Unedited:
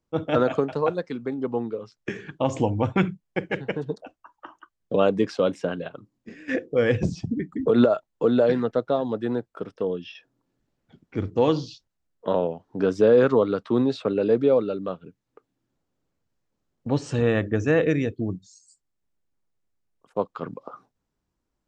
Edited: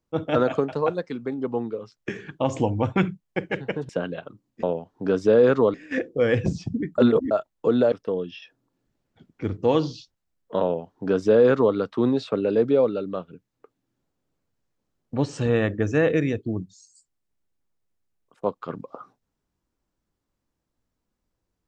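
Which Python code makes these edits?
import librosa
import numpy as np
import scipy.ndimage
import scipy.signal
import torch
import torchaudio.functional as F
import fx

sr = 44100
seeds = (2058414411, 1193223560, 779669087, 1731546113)

y = fx.edit(x, sr, fx.cut(start_s=3.89, length_s=1.68),
    fx.reverse_span(start_s=7.55, length_s=0.33),
    fx.cut(start_s=8.49, length_s=1.16),
    fx.duplicate(start_s=12.37, length_s=1.11, to_s=6.31), tone=tone)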